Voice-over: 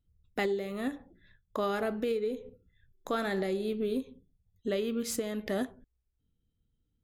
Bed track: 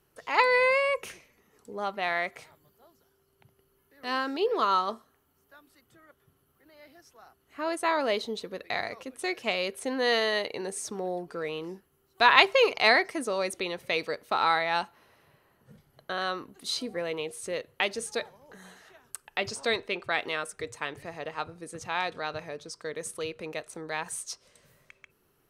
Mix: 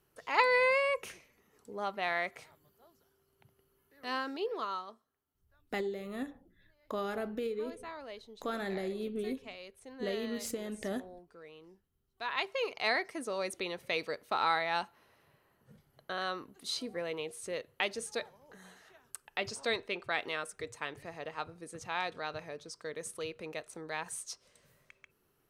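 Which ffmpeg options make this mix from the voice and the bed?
ffmpeg -i stem1.wav -i stem2.wav -filter_complex "[0:a]adelay=5350,volume=-5dB[link_01];[1:a]volume=9.5dB,afade=type=out:start_time=3.95:duration=0.98:silence=0.188365,afade=type=in:start_time=12.24:duration=1.38:silence=0.211349[link_02];[link_01][link_02]amix=inputs=2:normalize=0" out.wav

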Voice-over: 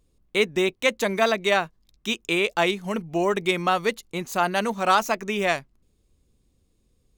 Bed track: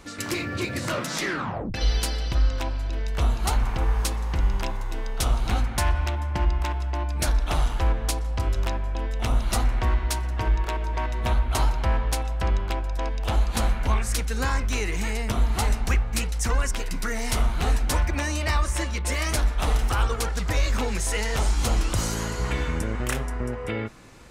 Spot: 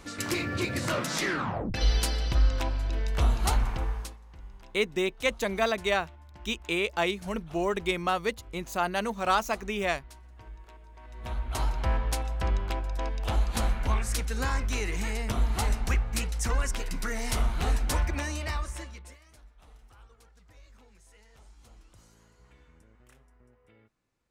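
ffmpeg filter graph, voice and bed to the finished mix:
ffmpeg -i stem1.wav -i stem2.wav -filter_complex "[0:a]adelay=4400,volume=-5.5dB[link_01];[1:a]volume=18dB,afade=type=out:start_time=3.5:duration=0.68:silence=0.0794328,afade=type=in:start_time=11.02:duration=0.86:silence=0.105925,afade=type=out:start_time=18.04:duration=1.15:silence=0.0398107[link_02];[link_01][link_02]amix=inputs=2:normalize=0" out.wav

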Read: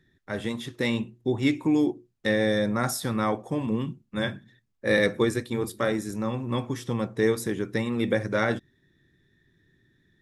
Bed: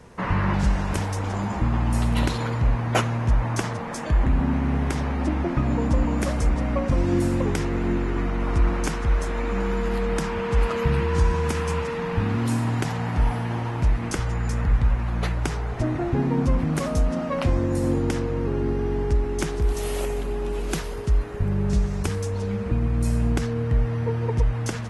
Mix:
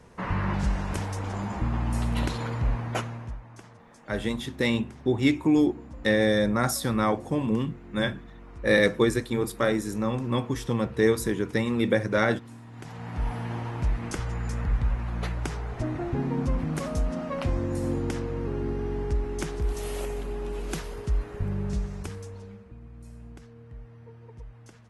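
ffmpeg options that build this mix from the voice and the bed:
ffmpeg -i stem1.wav -i stem2.wav -filter_complex "[0:a]adelay=3800,volume=1.5dB[link_01];[1:a]volume=11.5dB,afade=type=out:start_time=2.72:duration=0.69:silence=0.141254,afade=type=in:start_time=12.71:duration=0.74:silence=0.149624,afade=type=out:start_time=21.46:duration=1.22:silence=0.133352[link_02];[link_01][link_02]amix=inputs=2:normalize=0" out.wav

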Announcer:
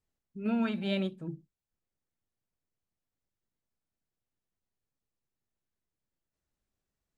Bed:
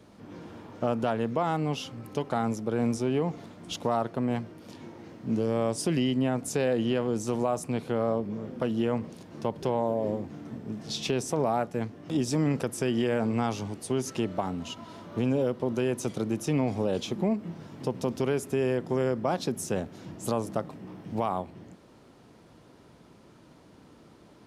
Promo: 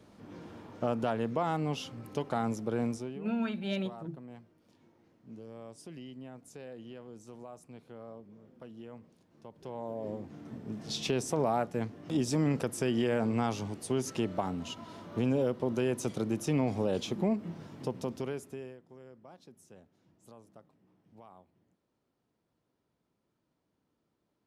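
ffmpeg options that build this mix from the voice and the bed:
ffmpeg -i stem1.wav -i stem2.wav -filter_complex "[0:a]adelay=2800,volume=-2.5dB[link_01];[1:a]volume=14dB,afade=type=out:start_time=2.76:duration=0.43:silence=0.149624,afade=type=in:start_time=9.51:duration=1.38:silence=0.133352,afade=type=out:start_time=17.61:duration=1.17:silence=0.0707946[link_02];[link_01][link_02]amix=inputs=2:normalize=0" out.wav

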